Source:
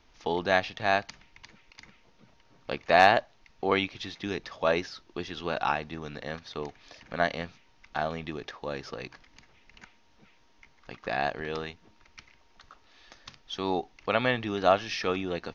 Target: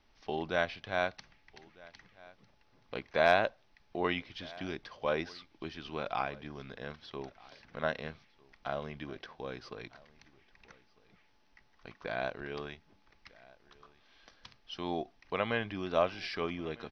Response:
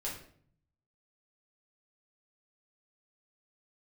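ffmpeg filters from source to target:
-filter_complex "[0:a]asplit=2[a][b];[b]aecho=0:1:1149:0.0668[c];[a][c]amix=inputs=2:normalize=0,asetrate=40517,aresample=44100,volume=-6.5dB"

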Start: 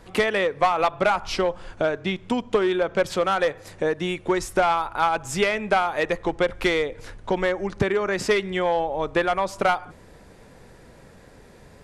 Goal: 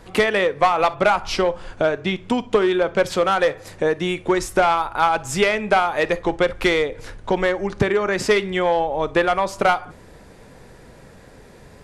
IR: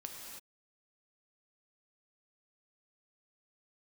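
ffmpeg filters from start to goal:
-filter_complex "[0:a]asplit=2[a][b];[1:a]atrim=start_sample=2205,atrim=end_sample=3087[c];[b][c]afir=irnorm=-1:irlink=0,volume=-1dB[d];[a][d]amix=inputs=2:normalize=0"

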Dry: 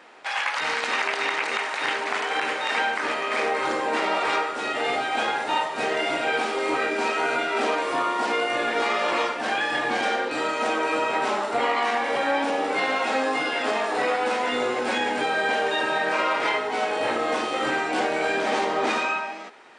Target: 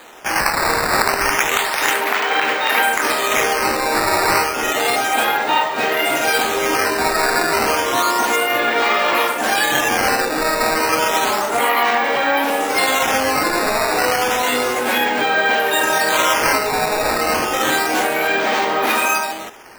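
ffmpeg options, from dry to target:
-filter_complex "[0:a]acrossover=split=140|870[a][b][c];[b]alimiter=limit=-23.5dB:level=0:latency=1:release=198[d];[a][d][c]amix=inputs=3:normalize=0,acrusher=samples=8:mix=1:aa=0.000001:lfo=1:lforange=12.8:lforate=0.31,volume=8.5dB"

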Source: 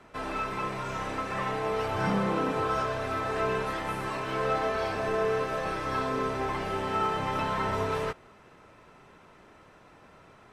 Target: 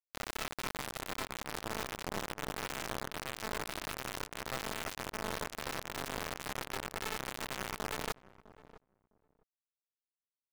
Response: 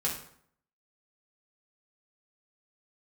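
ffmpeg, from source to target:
-filter_complex "[0:a]equalizer=f=2.3k:t=o:w=0.96:g=-9,areverse,acompressor=threshold=-37dB:ratio=12,areverse,acrusher=bits=3:dc=4:mix=0:aa=0.000001,asplit=2[a][b];[b]adelay=656,lowpass=f=800:p=1,volume=-16dB,asplit=2[c][d];[d]adelay=656,lowpass=f=800:p=1,volume=0.17[e];[a][c][e]amix=inputs=3:normalize=0,volume=4dB"

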